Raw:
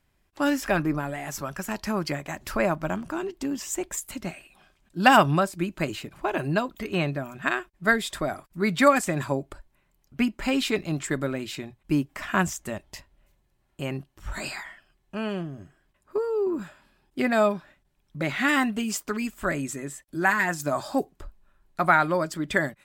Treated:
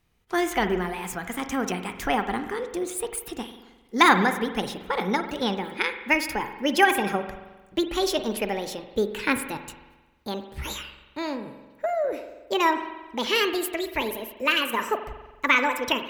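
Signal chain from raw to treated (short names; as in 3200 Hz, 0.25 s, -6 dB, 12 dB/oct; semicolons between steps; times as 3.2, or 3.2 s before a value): speed glide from 121% -> 163%; spring tank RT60 1.2 s, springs 44 ms, chirp 75 ms, DRR 8.5 dB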